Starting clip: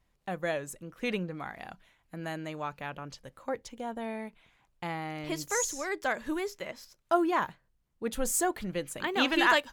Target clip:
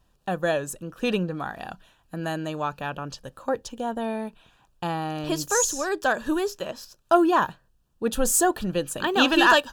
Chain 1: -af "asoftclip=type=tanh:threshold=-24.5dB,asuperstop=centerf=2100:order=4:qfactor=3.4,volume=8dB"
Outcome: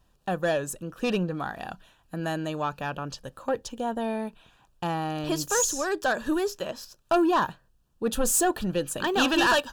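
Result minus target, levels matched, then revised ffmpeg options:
soft clipping: distortion +14 dB
-af "asoftclip=type=tanh:threshold=-12.5dB,asuperstop=centerf=2100:order=4:qfactor=3.4,volume=8dB"

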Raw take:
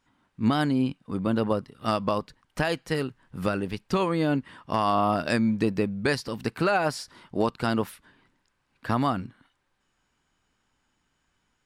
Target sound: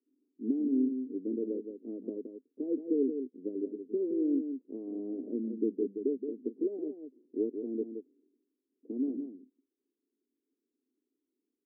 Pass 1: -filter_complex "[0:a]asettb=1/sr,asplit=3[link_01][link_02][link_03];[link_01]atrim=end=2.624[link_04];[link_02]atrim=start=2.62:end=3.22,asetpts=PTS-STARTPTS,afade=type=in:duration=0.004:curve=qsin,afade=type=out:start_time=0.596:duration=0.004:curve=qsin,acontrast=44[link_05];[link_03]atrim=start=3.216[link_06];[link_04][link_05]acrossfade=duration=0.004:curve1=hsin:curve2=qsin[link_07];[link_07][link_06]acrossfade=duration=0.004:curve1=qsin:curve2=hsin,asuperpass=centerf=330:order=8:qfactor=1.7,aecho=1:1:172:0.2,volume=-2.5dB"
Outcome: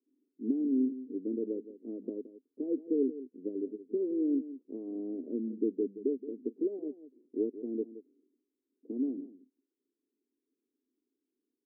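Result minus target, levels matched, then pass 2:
echo-to-direct −6.5 dB
-filter_complex "[0:a]asettb=1/sr,asplit=3[link_01][link_02][link_03];[link_01]atrim=end=2.624[link_04];[link_02]atrim=start=2.62:end=3.22,asetpts=PTS-STARTPTS,afade=type=in:duration=0.004:curve=qsin,afade=type=out:start_time=0.596:duration=0.004:curve=qsin,acontrast=44[link_05];[link_03]atrim=start=3.216[link_06];[link_04][link_05]acrossfade=duration=0.004:curve1=hsin:curve2=qsin[link_07];[link_07][link_06]acrossfade=duration=0.004:curve1=qsin:curve2=hsin,asuperpass=centerf=330:order=8:qfactor=1.7,aecho=1:1:172:0.422,volume=-2.5dB"

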